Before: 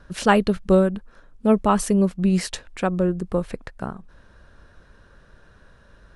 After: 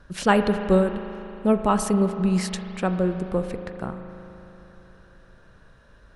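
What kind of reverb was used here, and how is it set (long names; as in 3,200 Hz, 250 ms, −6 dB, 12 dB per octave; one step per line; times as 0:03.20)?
spring reverb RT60 3.4 s, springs 38 ms, chirp 45 ms, DRR 7.5 dB
level −2 dB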